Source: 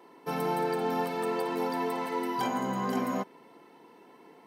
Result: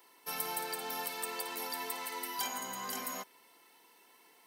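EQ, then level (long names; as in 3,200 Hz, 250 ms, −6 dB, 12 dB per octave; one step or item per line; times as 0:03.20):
first-order pre-emphasis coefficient 0.97
+8.5 dB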